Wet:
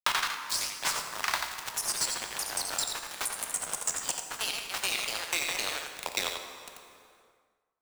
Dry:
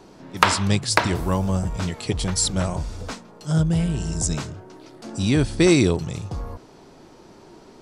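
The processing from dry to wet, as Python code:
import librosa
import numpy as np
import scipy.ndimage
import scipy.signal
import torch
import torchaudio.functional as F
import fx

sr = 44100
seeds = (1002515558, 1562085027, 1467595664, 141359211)

p1 = fx.block_reorder(x, sr, ms=121.0, group=4)
p2 = scipy.signal.sosfilt(scipy.signal.butter(4, 730.0, 'highpass', fs=sr, output='sos'), p1)
p3 = fx.high_shelf(p2, sr, hz=4200.0, db=-3.0)
p4 = fx.rider(p3, sr, range_db=5, speed_s=0.5)
p5 = fx.quant_dither(p4, sr, seeds[0], bits=6, dither='none')
p6 = np.sign(p5) * np.maximum(np.abs(p5) - 10.0 ** (-29.5 / 20.0), 0.0)
p7 = fx.tremolo_random(p6, sr, seeds[1], hz=3.5, depth_pct=55)
p8 = np.clip(10.0 ** (17.5 / 20.0) * p7, -1.0, 1.0) / 10.0 ** (17.5 / 20.0)
p9 = p8 + fx.echo_single(p8, sr, ms=88, db=-6.5, dry=0)
p10 = fx.rev_plate(p9, sr, seeds[2], rt60_s=1.3, hf_ratio=0.8, predelay_ms=0, drr_db=6.5)
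p11 = fx.echo_pitch(p10, sr, ms=90, semitones=2, count=2, db_per_echo=-3.0)
p12 = fx.band_squash(p11, sr, depth_pct=70)
y = F.gain(torch.from_numpy(p12), 2.5).numpy()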